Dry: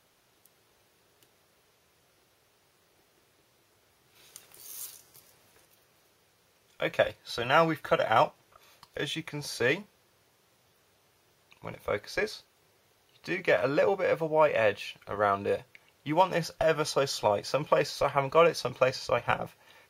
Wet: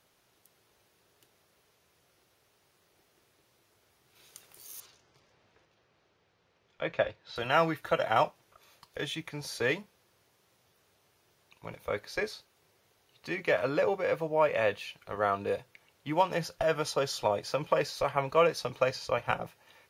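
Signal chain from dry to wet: 4.8–7.36 air absorption 160 m; gain -2.5 dB

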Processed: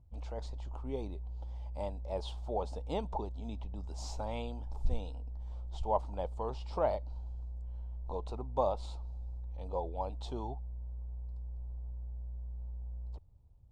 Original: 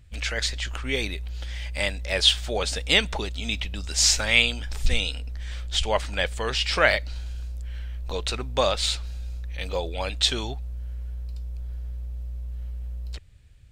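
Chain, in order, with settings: EQ curve 560 Hz 0 dB, 920 Hz +7 dB, 1700 Hz -28 dB, 4300 Hz -20 dB, 12000 Hz -23 dB; gain -8.5 dB

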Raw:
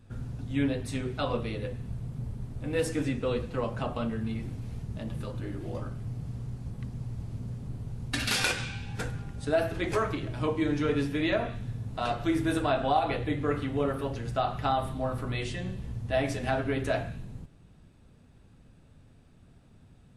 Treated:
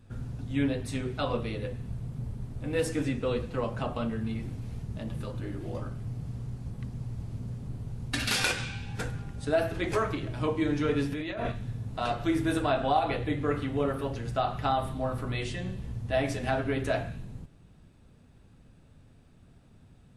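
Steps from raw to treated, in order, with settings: 11.12–11.52 negative-ratio compressor -33 dBFS, ratio -1

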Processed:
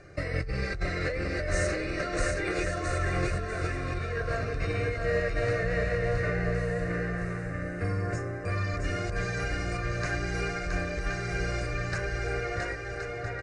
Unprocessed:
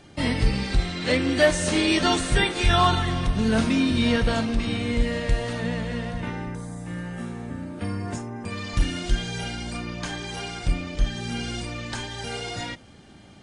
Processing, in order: LPF 4800 Hz 12 dB/oct, from 11.98 s 2300 Hz; negative-ratio compressor -27 dBFS, ratio -1; fixed phaser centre 890 Hz, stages 6; bouncing-ball echo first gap 0.67 s, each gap 0.6×, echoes 5

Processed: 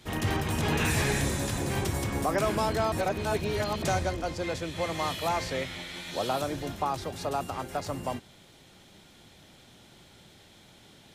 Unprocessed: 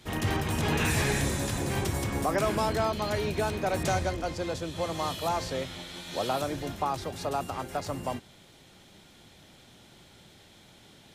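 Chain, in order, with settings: 2.92–3.83 reverse; 4.43–6.11 bell 2100 Hz +8 dB 0.61 oct

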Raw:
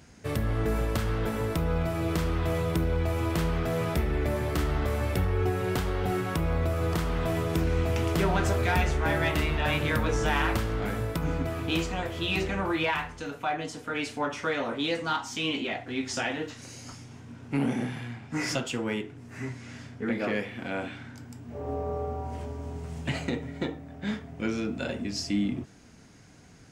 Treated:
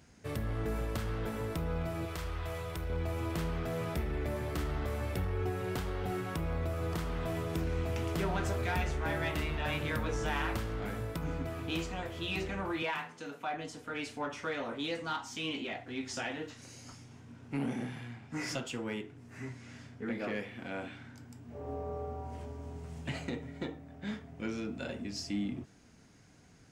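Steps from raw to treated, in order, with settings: 2.05–2.9 bell 230 Hz -15 dB 1.4 oct; 12.82–13.54 HPF 150 Hz 24 dB/oct; in parallel at -10.5 dB: soft clip -25 dBFS, distortion -13 dB; on the sum: gain -9 dB

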